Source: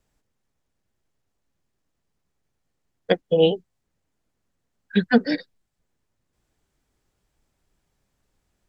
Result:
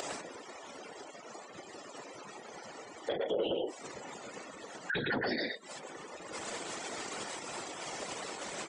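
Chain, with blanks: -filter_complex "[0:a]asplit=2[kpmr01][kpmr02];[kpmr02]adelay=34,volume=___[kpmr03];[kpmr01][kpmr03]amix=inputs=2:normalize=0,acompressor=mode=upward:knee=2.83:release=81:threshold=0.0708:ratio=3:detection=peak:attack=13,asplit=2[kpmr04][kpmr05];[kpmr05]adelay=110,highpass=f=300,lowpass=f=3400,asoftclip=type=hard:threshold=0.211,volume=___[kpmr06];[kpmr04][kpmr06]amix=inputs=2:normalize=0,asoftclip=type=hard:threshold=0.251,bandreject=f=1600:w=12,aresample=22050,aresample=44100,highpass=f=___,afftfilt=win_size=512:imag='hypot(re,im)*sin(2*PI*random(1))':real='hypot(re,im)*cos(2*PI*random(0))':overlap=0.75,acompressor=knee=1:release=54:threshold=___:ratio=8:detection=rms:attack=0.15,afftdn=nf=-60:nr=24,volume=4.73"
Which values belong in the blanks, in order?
0.224, 0.355, 400, 0.00891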